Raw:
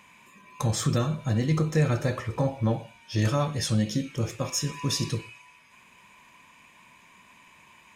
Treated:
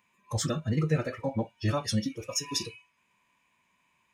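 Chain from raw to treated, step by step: dynamic bell 5.5 kHz, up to +4 dB, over -46 dBFS, Q 0.8; time stretch by phase-locked vocoder 0.52×; spectral noise reduction 13 dB; trim -1.5 dB

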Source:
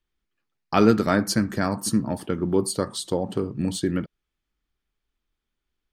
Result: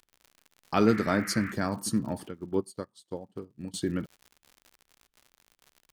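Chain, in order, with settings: crackle 98 per s -36 dBFS; 0.86–1.51 s: band noise 1.2–2.2 kHz -35 dBFS; 2.29–3.74 s: upward expansion 2.5:1, over -37 dBFS; trim -5.5 dB

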